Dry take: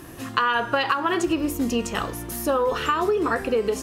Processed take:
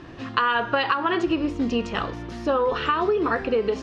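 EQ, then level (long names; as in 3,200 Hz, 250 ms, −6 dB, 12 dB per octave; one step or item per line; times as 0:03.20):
low-pass filter 4,600 Hz 24 dB per octave
0.0 dB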